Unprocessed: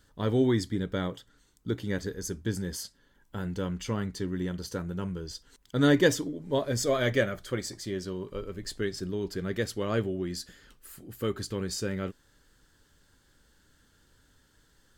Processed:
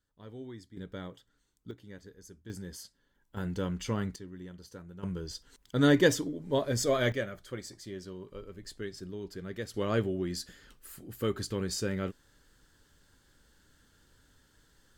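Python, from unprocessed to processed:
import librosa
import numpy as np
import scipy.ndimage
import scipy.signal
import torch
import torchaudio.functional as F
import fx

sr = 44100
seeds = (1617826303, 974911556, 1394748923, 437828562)

y = fx.gain(x, sr, db=fx.steps((0.0, -20.0), (0.77, -10.5), (1.71, -17.0), (2.5, -8.5), (3.37, -1.0), (4.16, -13.0), (5.03, -1.0), (7.12, -8.0), (9.74, -0.5)))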